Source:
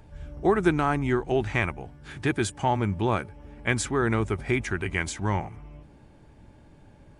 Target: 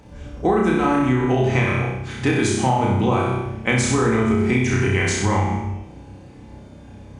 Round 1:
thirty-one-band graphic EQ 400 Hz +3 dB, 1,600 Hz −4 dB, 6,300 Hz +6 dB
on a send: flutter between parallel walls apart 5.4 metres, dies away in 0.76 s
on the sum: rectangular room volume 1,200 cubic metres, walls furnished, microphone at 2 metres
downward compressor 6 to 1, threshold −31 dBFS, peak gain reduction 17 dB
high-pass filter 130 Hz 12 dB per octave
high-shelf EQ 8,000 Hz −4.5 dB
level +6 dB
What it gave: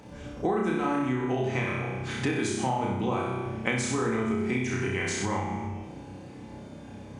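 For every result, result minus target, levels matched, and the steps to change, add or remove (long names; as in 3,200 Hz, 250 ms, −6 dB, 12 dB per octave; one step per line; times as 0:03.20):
downward compressor: peak gain reduction +9 dB; 125 Hz band −2.5 dB
change: downward compressor 6 to 1, threshold −20.5 dBFS, peak gain reduction 8 dB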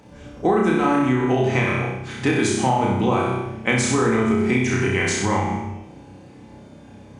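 125 Hz band −3.0 dB
change: high-pass filter 60 Hz 12 dB per octave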